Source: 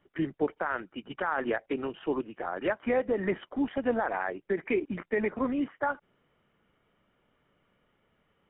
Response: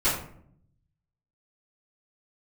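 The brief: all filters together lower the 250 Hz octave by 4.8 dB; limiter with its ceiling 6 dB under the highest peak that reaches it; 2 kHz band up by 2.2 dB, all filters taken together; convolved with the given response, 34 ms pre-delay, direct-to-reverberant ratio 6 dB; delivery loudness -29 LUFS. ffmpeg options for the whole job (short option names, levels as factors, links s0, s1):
-filter_complex "[0:a]equalizer=f=250:t=o:g=-6,equalizer=f=2000:t=o:g=3,alimiter=limit=0.0794:level=0:latency=1,asplit=2[s0][s1];[1:a]atrim=start_sample=2205,adelay=34[s2];[s1][s2]afir=irnorm=-1:irlink=0,volume=0.106[s3];[s0][s3]amix=inputs=2:normalize=0,volume=1.68"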